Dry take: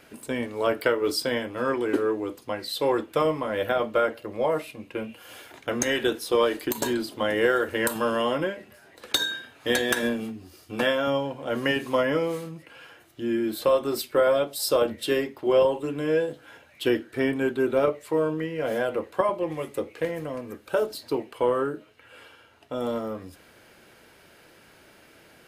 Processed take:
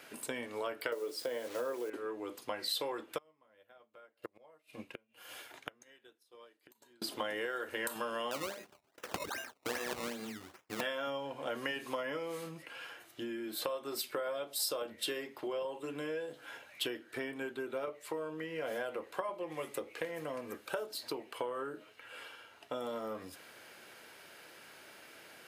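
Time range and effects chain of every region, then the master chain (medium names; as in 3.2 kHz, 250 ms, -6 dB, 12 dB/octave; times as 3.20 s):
0.92–1.90 s: peaking EQ 500 Hz +13 dB 1.3 oct + word length cut 6-bit, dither none
3.18–7.02 s: bass shelf 81 Hz +7.5 dB + inverted gate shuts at -25 dBFS, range -27 dB + upward expansion, over -59 dBFS
8.31–10.81 s: gate -51 dBFS, range -23 dB + decimation with a swept rate 19× 2.5 Hz
whole clip: compression 10:1, threshold -32 dBFS; high-pass 91 Hz; bass shelf 370 Hz -11.5 dB; trim +1 dB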